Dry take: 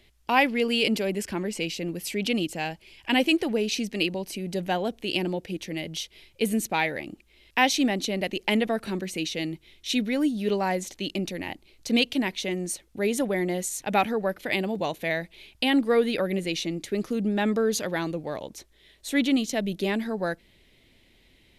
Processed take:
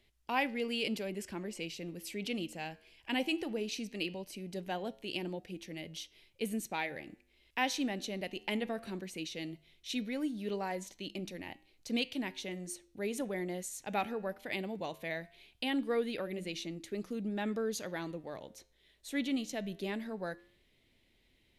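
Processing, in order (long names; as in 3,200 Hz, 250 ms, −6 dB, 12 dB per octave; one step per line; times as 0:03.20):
flanger 0.18 Hz, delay 7.3 ms, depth 4.4 ms, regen −89%
level −6.5 dB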